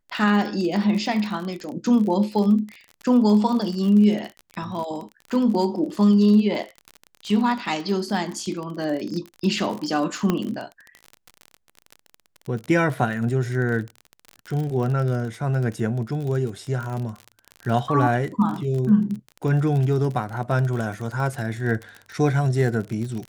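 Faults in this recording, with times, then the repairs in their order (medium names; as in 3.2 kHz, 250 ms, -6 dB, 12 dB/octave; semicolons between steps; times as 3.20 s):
crackle 36 per s -28 dBFS
10.30 s: pop -9 dBFS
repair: de-click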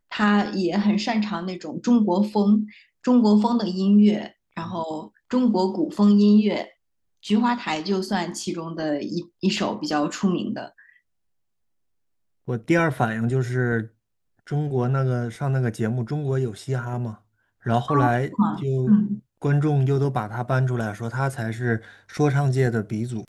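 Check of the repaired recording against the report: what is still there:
nothing left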